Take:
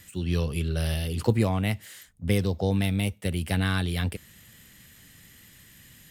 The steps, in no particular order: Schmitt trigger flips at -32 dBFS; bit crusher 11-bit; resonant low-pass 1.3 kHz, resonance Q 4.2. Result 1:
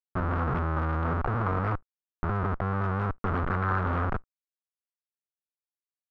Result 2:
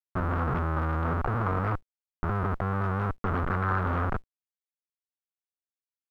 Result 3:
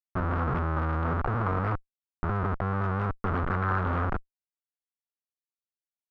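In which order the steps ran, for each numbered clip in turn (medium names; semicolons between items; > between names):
Schmitt trigger > bit crusher > resonant low-pass; Schmitt trigger > resonant low-pass > bit crusher; bit crusher > Schmitt trigger > resonant low-pass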